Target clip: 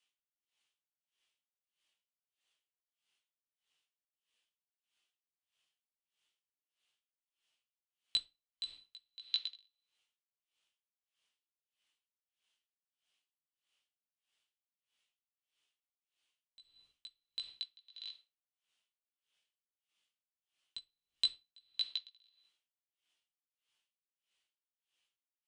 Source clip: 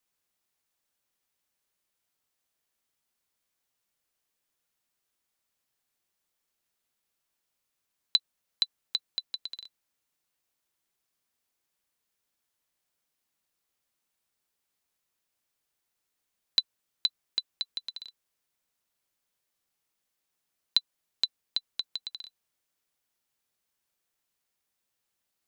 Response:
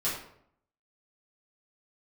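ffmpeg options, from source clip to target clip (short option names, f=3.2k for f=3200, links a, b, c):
-filter_complex "[0:a]aeval=exprs='clip(val(0),-1,0.0794)':c=same,equalizer=f=3k:t=o:w=0.74:g=15,alimiter=limit=-12dB:level=0:latency=1,lowshelf=f=250:g=-9.5,flanger=delay=16.5:depth=2.1:speed=0.13,asplit=2[a][b];[1:a]atrim=start_sample=2205[c];[b][c]afir=irnorm=-1:irlink=0,volume=-13.5dB[d];[a][d]amix=inputs=2:normalize=0,aresample=22050,aresample=44100,aeval=exprs='val(0)*pow(10,-31*(0.5-0.5*cos(2*PI*1.6*n/s))/20)':c=same,volume=-1.5dB"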